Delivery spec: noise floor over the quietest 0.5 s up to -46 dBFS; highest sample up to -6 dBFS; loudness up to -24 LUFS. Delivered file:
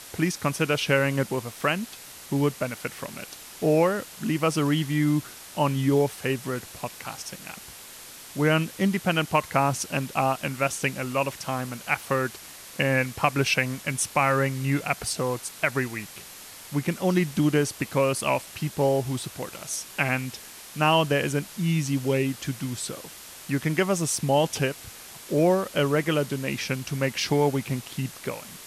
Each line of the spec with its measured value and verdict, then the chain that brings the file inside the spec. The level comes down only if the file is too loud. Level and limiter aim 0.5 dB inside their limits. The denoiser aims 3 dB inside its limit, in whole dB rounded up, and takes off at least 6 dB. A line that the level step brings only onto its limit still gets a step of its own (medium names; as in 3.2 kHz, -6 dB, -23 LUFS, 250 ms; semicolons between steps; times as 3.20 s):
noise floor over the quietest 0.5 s -44 dBFS: fail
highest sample -7.5 dBFS: pass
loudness -26.0 LUFS: pass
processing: noise reduction 6 dB, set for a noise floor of -44 dBFS